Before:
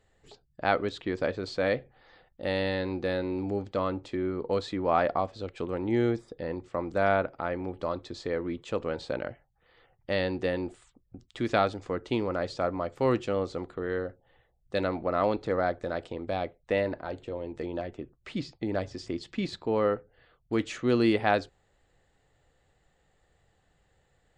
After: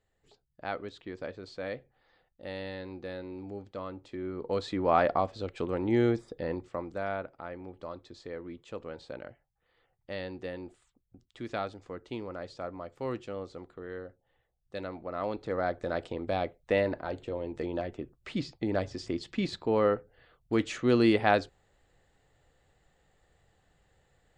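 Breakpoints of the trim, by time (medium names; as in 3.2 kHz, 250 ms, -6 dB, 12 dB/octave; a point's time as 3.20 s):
3.95 s -10 dB
4.80 s +0.5 dB
6.54 s +0.5 dB
7.05 s -9.5 dB
15.06 s -9.5 dB
15.95 s +0.5 dB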